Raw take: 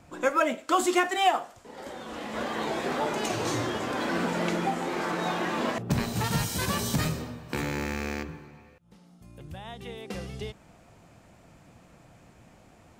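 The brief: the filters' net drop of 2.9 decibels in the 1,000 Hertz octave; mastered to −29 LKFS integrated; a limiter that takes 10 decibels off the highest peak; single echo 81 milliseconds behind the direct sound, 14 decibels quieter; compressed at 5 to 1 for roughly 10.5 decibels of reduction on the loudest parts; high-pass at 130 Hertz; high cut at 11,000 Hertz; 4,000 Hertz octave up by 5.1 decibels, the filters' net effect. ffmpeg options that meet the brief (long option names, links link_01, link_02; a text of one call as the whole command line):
ffmpeg -i in.wav -af "highpass=130,lowpass=11000,equalizer=frequency=1000:width_type=o:gain=-4.5,equalizer=frequency=4000:width_type=o:gain=7,acompressor=threshold=-32dB:ratio=5,alimiter=level_in=2.5dB:limit=-24dB:level=0:latency=1,volume=-2.5dB,aecho=1:1:81:0.2,volume=8dB" out.wav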